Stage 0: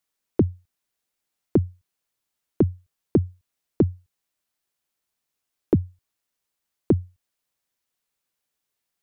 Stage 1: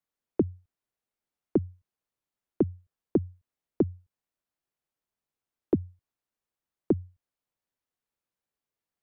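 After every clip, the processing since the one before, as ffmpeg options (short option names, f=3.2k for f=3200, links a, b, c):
-filter_complex "[0:a]highshelf=f=2k:g=-11,acrossover=split=210|790[a][b][c];[a]alimiter=level_in=2dB:limit=-24dB:level=0:latency=1:release=137,volume=-2dB[d];[d][b][c]amix=inputs=3:normalize=0,volume=-3dB"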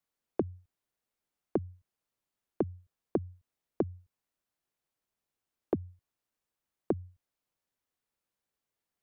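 -af "acompressor=threshold=-28dB:ratio=6,volume=1.5dB"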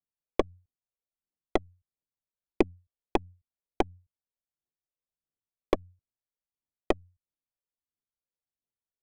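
-af "aeval=exprs='0.188*(cos(1*acos(clip(val(0)/0.188,-1,1)))-cos(1*PI/2))+0.00237*(cos(3*acos(clip(val(0)/0.188,-1,1)))-cos(3*PI/2))+0.0211*(cos(4*acos(clip(val(0)/0.188,-1,1)))-cos(4*PI/2))+0.0299*(cos(7*acos(clip(val(0)/0.188,-1,1)))-cos(7*PI/2))':c=same,adynamicsmooth=sensitivity=5:basefreq=1.1k,aphaser=in_gain=1:out_gain=1:delay=2.2:decay=0.5:speed=1.5:type=triangular,volume=6dB"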